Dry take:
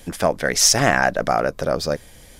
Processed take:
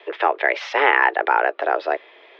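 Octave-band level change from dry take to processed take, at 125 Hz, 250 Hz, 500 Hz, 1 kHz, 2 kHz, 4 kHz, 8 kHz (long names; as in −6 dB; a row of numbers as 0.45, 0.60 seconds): below −40 dB, −9.5 dB, −1.5 dB, +4.0 dB, +3.5 dB, −10.5 dB, below −30 dB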